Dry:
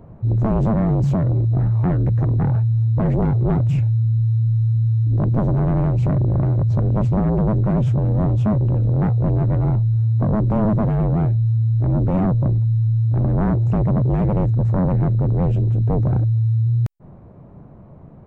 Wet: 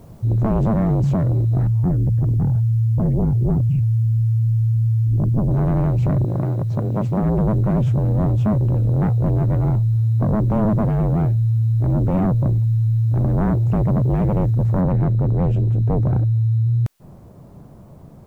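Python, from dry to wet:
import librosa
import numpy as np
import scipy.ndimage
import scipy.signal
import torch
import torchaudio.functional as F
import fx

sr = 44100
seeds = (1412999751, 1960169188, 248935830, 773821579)

y = fx.envelope_sharpen(x, sr, power=1.5, at=(1.67, 5.51))
y = fx.highpass(y, sr, hz=130.0, slope=12, at=(6.24, 7.23))
y = fx.noise_floor_step(y, sr, seeds[0], at_s=14.81, before_db=-62, after_db=-68, tilt_db=0.0)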